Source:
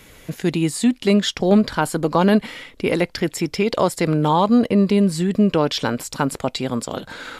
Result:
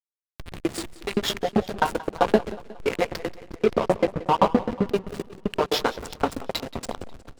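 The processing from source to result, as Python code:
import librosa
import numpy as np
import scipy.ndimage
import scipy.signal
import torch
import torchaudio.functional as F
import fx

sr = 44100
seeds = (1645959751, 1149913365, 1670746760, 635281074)

p1 = fx.riaa(x, sr, side='playback', at=(3.32, 4.86))
p2 = p1 + fx.echo_banded(p1, sr, ms=88, feedback_pct=52, hz=430.0, wet_db=-7.0, dry=0)
p3 = fx.room_shoebox(p2, sr, seeds[0], volume_m3=180.0, walls='furnished', distance_m=1.7)
p4 = fx.filter_lfo_highpass(p3, sr, shape='saw_up', hz=7.7, low_hz=320.0, high_hz=4400.0, q=0.72)
p5 = fx.rider(p4, sr, range_db=4, speed_s=2.0)
p6 = p4 + F.gain(torch.from_numpy(p5), -0.5).numpy()
p7 = fx.backlash(p6, sr, play_db=-10.0)
p8 = fx.echo_warbled(p7, sr, ms=181, feedback_pct=52, rate_hz=2.8, cents=92, wet_db=-18.0)
y = F.gain(torch.from_numpy(p8), -6.5).numpy()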